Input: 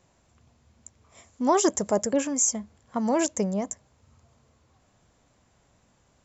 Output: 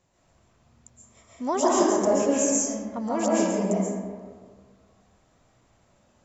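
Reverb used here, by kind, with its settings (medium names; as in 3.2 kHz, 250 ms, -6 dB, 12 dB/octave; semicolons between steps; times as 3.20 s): algorithmic reverb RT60 1.7 s, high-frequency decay 0.5×, pre-delay 95 ms, DRR -6.5 dB; trim -5.5 dB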